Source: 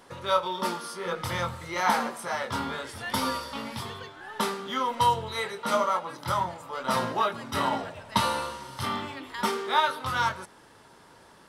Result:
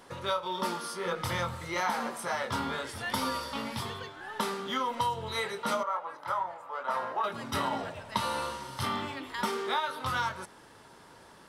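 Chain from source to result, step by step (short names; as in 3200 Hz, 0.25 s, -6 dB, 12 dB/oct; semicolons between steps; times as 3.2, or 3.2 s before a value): 5.83–7.24 three-band isolator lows -19 dB, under 490 Hz, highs -15 dB, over 2000 Hz; compressor 6:1, threshold -27 dBFS, peak gain reduction 9.5 dB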